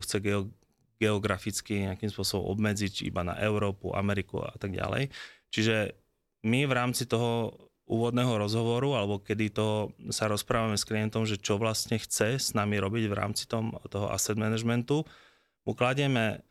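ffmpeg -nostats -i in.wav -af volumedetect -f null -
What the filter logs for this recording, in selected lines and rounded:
mean_volume: -30.0 dB
max_volume: -11.9 dB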